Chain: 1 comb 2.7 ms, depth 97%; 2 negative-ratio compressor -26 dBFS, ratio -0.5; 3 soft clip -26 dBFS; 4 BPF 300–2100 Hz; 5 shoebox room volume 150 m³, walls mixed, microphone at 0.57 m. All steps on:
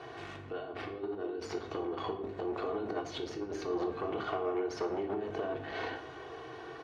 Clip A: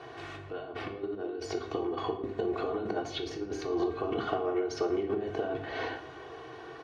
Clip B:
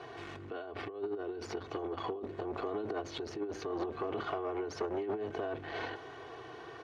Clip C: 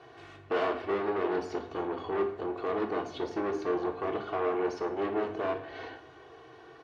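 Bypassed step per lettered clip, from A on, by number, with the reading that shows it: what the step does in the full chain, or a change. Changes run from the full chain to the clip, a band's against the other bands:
3, distortion -10 dB; 5, echo-to-direct -4.5 dB to none; 2, momentary loudness spread change +10 LU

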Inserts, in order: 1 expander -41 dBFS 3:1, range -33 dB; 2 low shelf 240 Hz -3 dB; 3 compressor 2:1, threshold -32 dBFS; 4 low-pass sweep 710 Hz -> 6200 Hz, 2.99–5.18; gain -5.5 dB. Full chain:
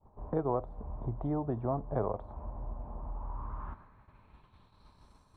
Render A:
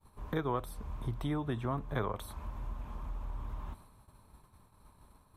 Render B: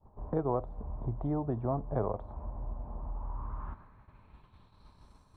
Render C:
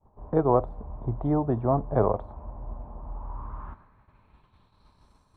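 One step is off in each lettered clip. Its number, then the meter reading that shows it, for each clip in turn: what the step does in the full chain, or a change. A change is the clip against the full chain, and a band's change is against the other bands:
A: 4, 2 kHz band +13.0 dB; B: 2, 125 Hz band +1.5 dB; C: 3, mean gain reduction 4.0 dB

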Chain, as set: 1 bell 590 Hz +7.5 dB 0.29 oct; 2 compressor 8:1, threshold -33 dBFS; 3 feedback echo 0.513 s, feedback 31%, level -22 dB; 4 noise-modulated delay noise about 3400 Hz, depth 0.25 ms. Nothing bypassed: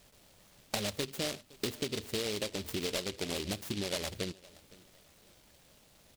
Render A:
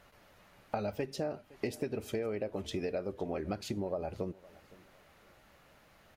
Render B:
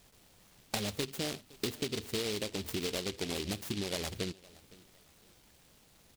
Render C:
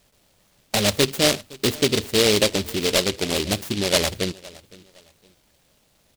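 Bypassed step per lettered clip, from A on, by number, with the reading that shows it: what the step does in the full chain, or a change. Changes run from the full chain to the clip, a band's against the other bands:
4, 4 kHz band -13.0 dB; 1, 125 Hz band +1.5 dB; 2, mean gain reduction 13.5 dB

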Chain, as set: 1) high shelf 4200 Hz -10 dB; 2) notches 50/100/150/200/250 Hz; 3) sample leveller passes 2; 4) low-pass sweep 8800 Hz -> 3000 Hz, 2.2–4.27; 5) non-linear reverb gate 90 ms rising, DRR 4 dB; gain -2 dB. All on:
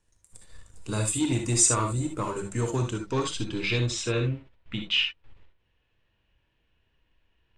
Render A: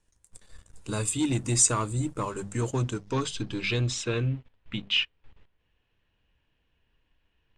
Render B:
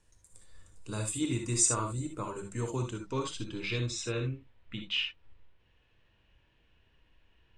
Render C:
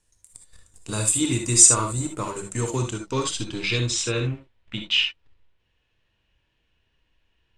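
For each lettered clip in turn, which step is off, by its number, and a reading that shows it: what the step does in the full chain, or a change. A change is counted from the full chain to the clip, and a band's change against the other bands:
5, momentary loudness spread change +1 LU; 3, crest factor change +4.0 dB; 1, 8 kHz band +6.5 dB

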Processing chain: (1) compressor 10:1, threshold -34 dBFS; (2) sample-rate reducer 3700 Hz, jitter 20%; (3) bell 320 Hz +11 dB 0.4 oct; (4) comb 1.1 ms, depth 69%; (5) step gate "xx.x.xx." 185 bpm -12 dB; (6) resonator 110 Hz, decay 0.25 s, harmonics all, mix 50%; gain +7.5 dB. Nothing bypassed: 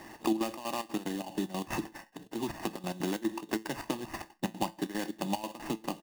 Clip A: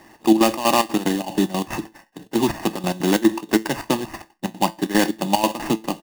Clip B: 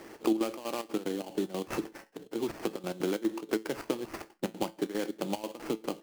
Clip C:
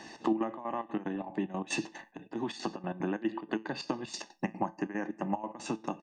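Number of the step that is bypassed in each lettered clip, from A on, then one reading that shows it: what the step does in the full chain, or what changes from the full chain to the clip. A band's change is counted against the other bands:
1, mean gain reduction 11.5 dB; 4, 500 Hz band +6.5 dB; 2, distortion -2 dB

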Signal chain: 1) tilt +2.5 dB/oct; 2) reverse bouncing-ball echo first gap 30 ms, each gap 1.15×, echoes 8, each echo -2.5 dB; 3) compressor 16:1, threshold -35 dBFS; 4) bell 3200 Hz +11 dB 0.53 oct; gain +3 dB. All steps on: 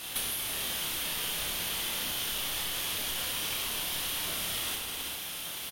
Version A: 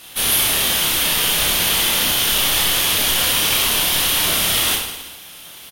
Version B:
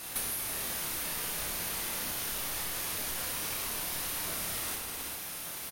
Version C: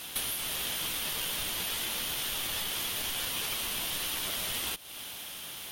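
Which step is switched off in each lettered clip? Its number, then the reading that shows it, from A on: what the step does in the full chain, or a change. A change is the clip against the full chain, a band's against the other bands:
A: 3, mean gain reduction 13.0 dB; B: 4, 4 kHz band -7.0 dB; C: 2, momentary loudness spread change +4 LU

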